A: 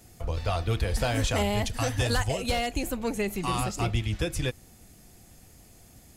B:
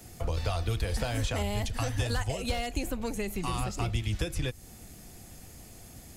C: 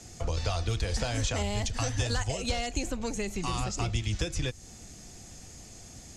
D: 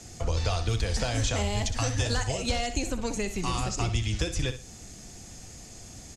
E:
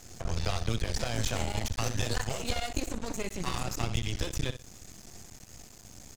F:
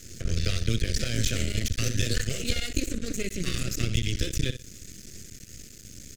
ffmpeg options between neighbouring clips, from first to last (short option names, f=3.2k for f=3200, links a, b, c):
-filter_complex "[0:a]acrossover=split=91|4200[a][b][c];[a]acompressor=threshold=-35dB:ratio=4[d];[b]acompressor=threshold=-37dB:ratio=4[e];[c]acompressor=threshold=-48dB:ratio=4[f];[d][e][f]amix=inputs=3:normalize=0,volume=4.5dB"
-af "lowpass=f=6.6k:t=q:w=2.5"
-af "aecho=1:1:62|124|186:0.282|0.0761|0.0205,volume=2dB"
-af "aeval=exprs='max(val(0),0)':c=same"
-af "asuperstop=centerf=880:order=4:qfactor=0.75,volume=5dB"